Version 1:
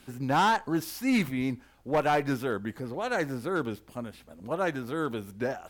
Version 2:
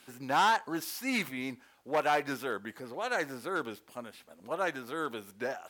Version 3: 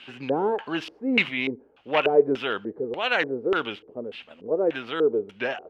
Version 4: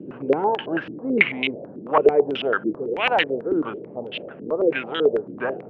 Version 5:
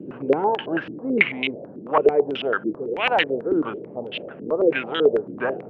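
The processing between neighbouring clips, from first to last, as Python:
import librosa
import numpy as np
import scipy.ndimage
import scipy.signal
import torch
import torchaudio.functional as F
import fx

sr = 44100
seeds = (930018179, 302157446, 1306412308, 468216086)

y1 = fx.highpass(x, sr, hz=660.0, slope=6)
y2 = fx.filter_lfo_lowpass(y1, sr, shape='square', hz=1.7, low_hz=440.0, high_hz=2900.0, q=5.8)
y2 = y2 * librosa.db_to_amplitude(5.5)
y3 = fx.tremolo_shape(y2, sr, shape='saw_down', hz=1.7, depth_pct=45)
y3 = fx.dmg_noise_band(y3, sr, seeds[0], low_hz=120.0, high_hz=580.0, level_db=-44.0)
y3 = fx.filter_held_lowpass(y3, sr, hz=9.1, low_hz=310.0, high_hz=3100.0)
y3 = y3 * librosa.db_to_amplitude(2.0)
y4 = fx.rider(y3, sr, range_db=4, speed_s=2.0)
y4 = y4 * librosa.db_to_amplitude(-1.0)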